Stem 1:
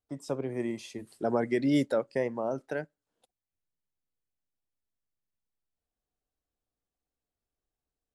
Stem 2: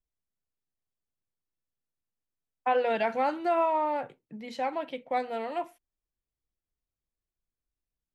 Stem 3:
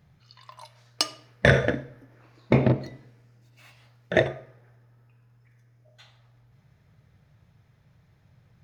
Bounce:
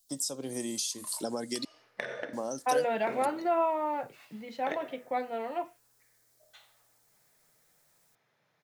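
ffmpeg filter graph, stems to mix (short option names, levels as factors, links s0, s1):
-filter_complex "[0:a]aecho=1:1:3.8:0.32,aexciter=amount=14.1:drive=5.9:freq=3400,volume=1,asplit=3[s0][s1][s2];[s0]atrim=end=1.65,asetpts=PTS-STARTPTS,afade=t=out:st=1.646:d=0.004:c=hsin[s3];[s1]atrim=start=1.65:end=2.33,asetpts=PTS-STARTPTS,volume=0[s4];[s2]atrim=start=2.33,asetpts=PTS-STARTPTS,afade=t=in:d=0.004:c=hsin[s5];[s3][s4][s5]concat=n=3:v=0:a=1[s6];[1:a]highshelf=f=4300:g=-9,flanger=delay=8.8:depth=2.7:regen=-64:speed=0.28:shape=triangular,volume=1.33,asplit=2[s7][s8];[2:a]highpass=410,acompressor=threshold=0.0398:ratio=6,adelay=550,volume=0.708[s9];[s8]apad=whole_len=405120[s10];[s9][s10]sidechaincompress=threshold=0.0282:ratio=8:attack=16:release=121[s11];[s6][s11]amix=inputs=2:normalize=0,highpass=96,acompressor=threshold=0.0282:ratio=6,volume=1[s12];[s7][s12]amix=inputs=2:normalize=0"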